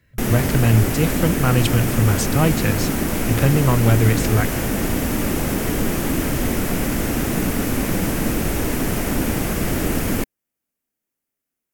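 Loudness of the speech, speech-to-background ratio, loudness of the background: -19.5 LUFS, 2.5 dB, -22.0 LUFS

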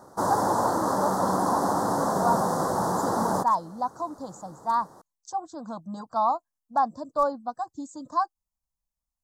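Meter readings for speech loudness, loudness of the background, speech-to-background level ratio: -30.5 LUFS, -25.5 LUFS, -5.0 dB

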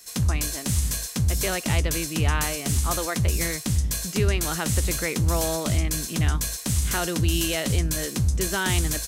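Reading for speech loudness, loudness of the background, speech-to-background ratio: -30.5 LUFS, -25.5 LUFS, -5.0 dB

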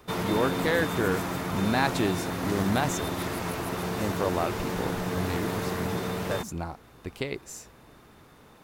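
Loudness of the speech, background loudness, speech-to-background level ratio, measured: -31.0 LUFS, -31.0 LUFS, 0.0 dB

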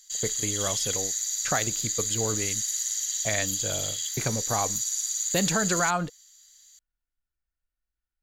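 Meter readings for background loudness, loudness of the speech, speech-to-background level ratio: -27.0 LUFS, -31.0 LUFS, -4.0 dB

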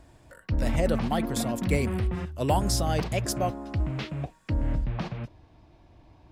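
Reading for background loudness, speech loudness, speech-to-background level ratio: -31.0 LUFS, -30.0 LUFS, 1.0 dB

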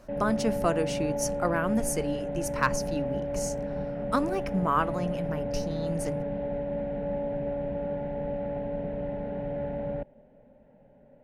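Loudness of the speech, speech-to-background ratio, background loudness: -31.0 LUFS, 1.5 dB, -32.5 LUFS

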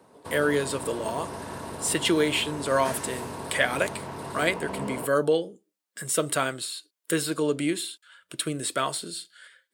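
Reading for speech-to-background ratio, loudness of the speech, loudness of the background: 9.0 dB, -27.5 LUFS, -36.5 LUFS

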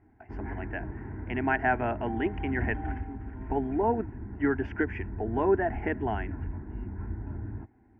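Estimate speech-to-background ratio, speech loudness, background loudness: 8.0 dB, -30.5 LUFS, -38.5 LUFS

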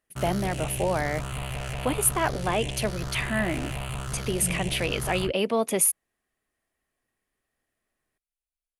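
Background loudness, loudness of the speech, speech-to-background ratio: -34.0 LUFS, -27.0 LUFS, 7.0 dB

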